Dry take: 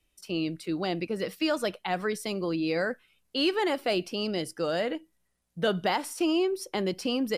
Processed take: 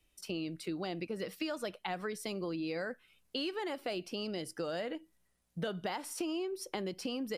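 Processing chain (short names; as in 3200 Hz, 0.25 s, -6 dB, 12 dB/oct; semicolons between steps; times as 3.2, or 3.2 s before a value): compressor 4:1, threshold -36 dBFS, peak gain reduction 12.5 dB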